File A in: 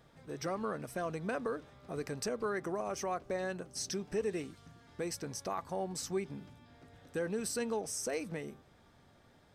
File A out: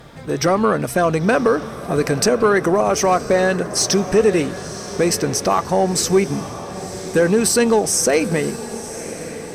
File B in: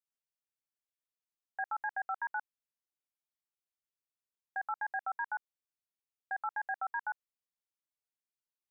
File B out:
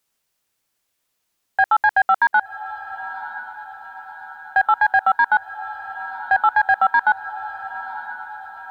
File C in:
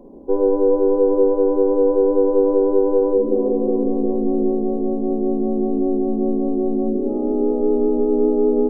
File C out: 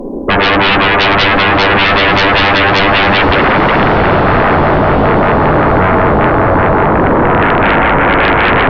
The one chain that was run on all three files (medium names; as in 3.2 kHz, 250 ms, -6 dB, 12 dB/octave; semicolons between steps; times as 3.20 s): sine folder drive 18 dB, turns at -5 dBFS; echo that smears into a reverb 1007 ms, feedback 54%, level -13.5 dB; trim -1 dB